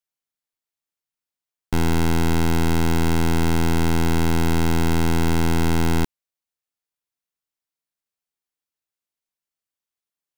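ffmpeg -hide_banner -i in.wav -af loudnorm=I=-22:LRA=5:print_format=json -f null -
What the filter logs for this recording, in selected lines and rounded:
"input_i" : "-21.7",
"input_tp" : "-15.1",
"input_lra" : "4.6",
"input_thresh" : "-31.7",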